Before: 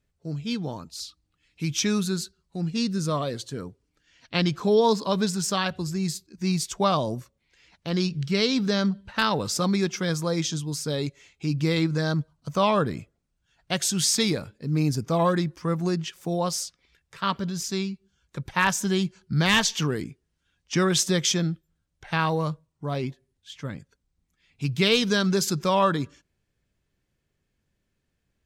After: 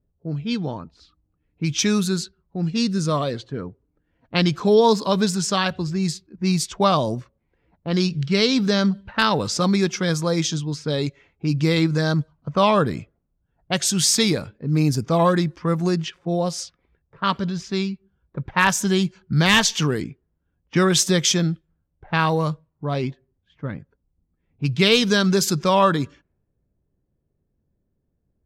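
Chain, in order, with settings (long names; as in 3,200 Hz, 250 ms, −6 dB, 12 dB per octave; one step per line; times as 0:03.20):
low-pass that shuts in the quiet parts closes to 600 Hz, open at −21.5 dBFS
0:16.18–0:16.59: harmonic and percussive parts rebalanced percussive −10 dB
level +4.5 dB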